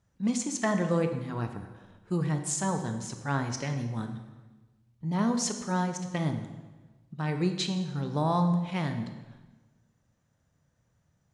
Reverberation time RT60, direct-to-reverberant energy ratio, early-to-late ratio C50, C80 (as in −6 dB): 1.2 s, 6.5 dB, 8.0 dB, 10.0 dB